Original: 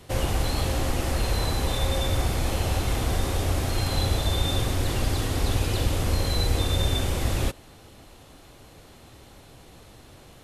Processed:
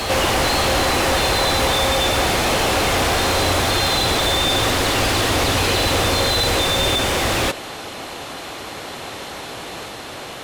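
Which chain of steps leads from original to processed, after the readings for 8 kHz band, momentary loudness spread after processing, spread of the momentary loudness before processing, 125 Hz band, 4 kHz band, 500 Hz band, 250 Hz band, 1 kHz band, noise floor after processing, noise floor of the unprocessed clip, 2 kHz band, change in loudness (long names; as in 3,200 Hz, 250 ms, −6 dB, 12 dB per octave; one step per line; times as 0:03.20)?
+11.0 dB, 14 LU, 2 LU, 0.0 dB, +13.0 dB, +11.0 dB, +7.5 dB, +13.5 dB, −33 dBFS, −50 dBFS, +15.0 dB, +9.0 dB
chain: mid-hump overdrive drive 29 dB, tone 4,000 Hz, clips at −10.5 dBFS
backwards echo 555 ms −5.5 dB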